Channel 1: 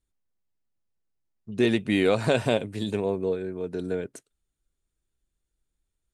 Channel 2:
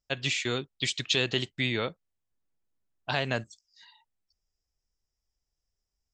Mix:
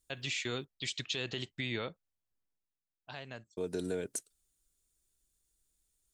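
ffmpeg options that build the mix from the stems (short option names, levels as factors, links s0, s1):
-filter_complex "[0:a]bass=f=250:g=-2,treble=f=4000:g=14,acompressor=threshold=0.0282:ratio=2,volume=0.794,asplit=3[s0][s1][s2];[s0]atrim=end=0.65,asetpts=PTS-STARTPTS,afade=t=out:st=0.646:d=0.004:c=hsin[s3];[s1]atrim=start=0.65:end=3.57,asetpts=PTS-STARTPTS,volume=0[s4];[s2]atrim=start=3.57,asetpts=PTS-STARTPTS,afade=t=in:d=0.004:c=hsin[s5];[s3][s4][s5]concat=n=3:v=0:a=1[s6];[1:a]volume=0.562,afade=t=out:st=2.39:d=0.37:silence=0.266073[s7];[s6][s7]amix=inputs=2:normalize=0,alimiter=limit=0.0631:level=0:latency=1:release=67"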